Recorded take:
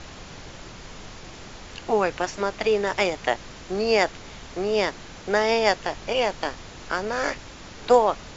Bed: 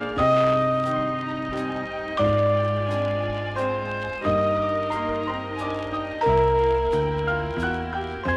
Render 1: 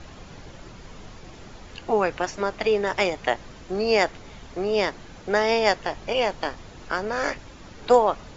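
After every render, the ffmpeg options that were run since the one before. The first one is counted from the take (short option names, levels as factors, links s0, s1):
-af "afftdn=nr=7:nf=-42"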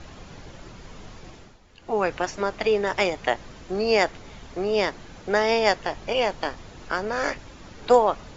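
-filter_complex "[0:a]asplit=3[s0][s1][s2];[s0]atrim=end=1.58,asetpts=PTS-STARTPTS,afade=t=out:st=1.28:d=0.3:silence=0.237137[s3];[s1]atrim=start=1.58:end=1.77,asetpts=PTS-STARTPTS,volume=0.237[s4];[s2]atrim=start=1.77,asetpts=PTS-STARTPTS,afade=t=in:d=0.3:silence=0.237137[s5];[s3][s4][s5]concat=n=3:v=0:a=1"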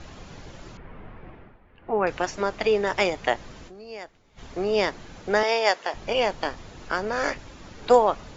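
-filter_complex "[0:a]asettb=1/sr,asplit=3[s0][s1][s2];[s0]atrim=end=0.774[s3];[s1]atrim=start=0.77:end=2.07,asetpts=PTS-STARTPTS,afade=t=in:d=0.004:c=qsin,afade=t=out:st=1.296:d=0.004:c=qsin,lowpass=f=2300:w=0.5412,lowpass=f=2300:w=1.3066[s4];[s2]atrim=start=2.066[s5];[s3][s4]acrossfade=d=0.004:c1=hsin:c2=qsin[s6];[s6][s5]acrossfade=d=0.004:c1=qsin:c2=hsin,asettb=1/sr,asplit=3[s7][s8][s9];[s7]atrim=end=5.434[s10];[s8]atrim=start=5.43:end=5.94,asetpts=PTS-STARTPTS,afade=t=in:d=0.004:c=qsin,afade=t=out:st=0.506:d=0.004:c=qsin,highpass=450[s11];[s9]atrim=start=5.936[s12];[s10][s11]acrossfade=d=0.004:c1=hsin:c2=qsin[s13];[s13][s12]acrossfade=d=0.004:c1=qsin:c2=hsin,asplit=3[s14][s15][s16];[s14]atrim=end=3.83,asetpts=PTS-STARTPTS,afade=t=out:st=3.68:d=0.15:c=exp:silence=0.11885[s17];[s15]atrim=start=3.83:end=4.24,asetpts=PTS-STARTPTS,volume=0.119[s18];[s16]atrim=start=4.24,asetpts=PTS-STARTPTS,afade=t=in:d=0.15:c=exp:silence=0.11885[s19];[s17][s18][s19]concat=n=3:v=0:a=1"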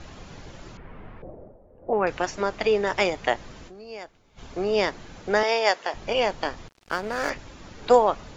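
-filter_complex "[0:a]asettb=1/sr,asplit=3[s0][s1][s2];[s0]atrim=end=1.224[s3];[s1]atrim=start=1.22:end=1.93,asetpts=PTS-STARTPTS,afade=t=in:d=0.004:c=qsin,afade=t=out:st=0.706:d=0.004:c=qsin,lowpass=f=570:t=q:w=4.1[s4];[s2]atrim=start=1.926[s5];[s3][s4]acrossfade=d=0.004:c1=hsin:c2=qsin[s6];[s6][s5]acrossfade=d=0.004:c1=qsin:c2=hsin,asettb=1/sr,asplit=3[s7][s8][s9];[s7]atrim=end=3.844[s10];[s8]atrim=start=3.84:end=4.62,asetpts=PTS-STARTPTS,afade=t=in:d=0.004:c=qsin,afade=t=out:st=0.776:d=0.004:c=qsin,bandreject=f=1900:w=12[s11];[s9]atrim=start=4.616[s12];[s10][s11]acrossfade=d=0.004:c1=hsin:c2=qsin[s13];[s13][s12]acrossfade=d=0.004:c1=qsin:c2=hsin,asettb=1/sr,asplit=3[s14][s15][s16];[s14]atrim=end=6.684[s17];[s15]atrim=start=6.68:end=7.3,asetpts=PTS-STARTPTS,afade=t=in:d=0.004:c=qsin,afade=t=out:st=0.616:d=0.004:c=qsin,aeval=exprs='sgn(val(0))*max(abs(val(0))-0.0133,0)':c=same[s18];[s16]atrim=start=7.296[s19];[s17][s18]acrossfade=d=0.004:c1=hsin:c2=qsin[s20];[s20][s19]acrossfade=d=0.004:c1=qsin:c2=hsin"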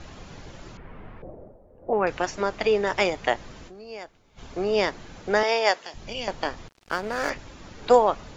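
-filter_complex "[0:a]asettb=1/sr,asplit=3[s0][s1][s2];[s0]atrim=end=5.794[s3];[s1]atrim=start=5.79:end=6.28,asetpts=PTS-STARTPTS,afade=t=in:d=0.004:c=qsin,afade=t=out:st=0.486:d=0.004:c=qsin,acrossover=split=250|3000[s4][s5][s6];[s5]acompressor=threshold=0.00316:ratio=2:attack=3.2:release=140:knee=2.83:detection=peak[s7];[s4][s7][s6]amix=inputs=3:normalize=0[s8];[s2]atrim=start=6.276[s9];[s3][s8]acrossfade=d=0.004:c1=hsin:c2=qsin[s10];[s10][s9]acrossfade=d=0.004:c1=qsin:c2=hsin"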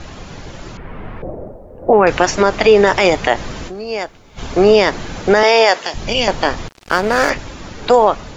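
-af "dynaudnorm=f=390:g=7:m=3.76,alimiter=level_in=3.16:limit=0.891:release=50:level=0:latency=1"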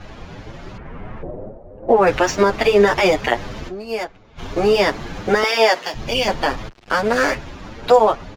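-filter_complex "[0:a]adynamicsmooth=sensitivity=6:basefreq=3500,asplit=2[s0][s1];[s1]adelay=7.8,afreqshift=2.9[s2];[s0][s2]amix=inputs=2:normalize=1"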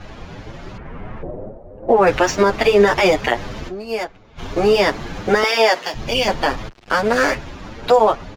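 -af "volume=1.12,alimiter=limit=0.708:level=0:latency=1"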